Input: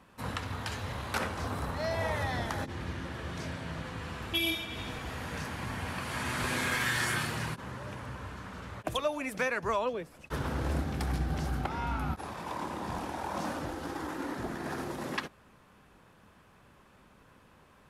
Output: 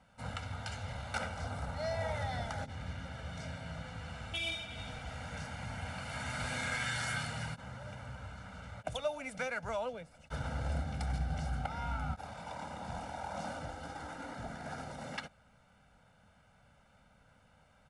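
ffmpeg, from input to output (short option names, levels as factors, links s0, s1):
-af "aecho=1:1:1.4:0.83,volume=0.422" -ar 22050 -c:a adpcm_ima_wav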